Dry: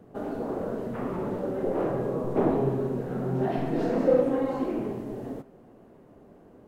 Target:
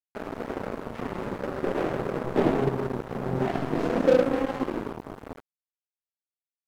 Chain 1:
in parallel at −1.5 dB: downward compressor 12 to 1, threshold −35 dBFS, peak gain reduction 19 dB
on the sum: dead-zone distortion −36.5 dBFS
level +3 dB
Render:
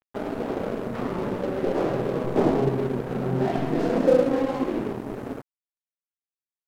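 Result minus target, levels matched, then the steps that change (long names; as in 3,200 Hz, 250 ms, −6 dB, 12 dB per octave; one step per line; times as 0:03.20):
dead-zone distortion: distortion −8 dB
change: dead-zone distortion −29 dBFS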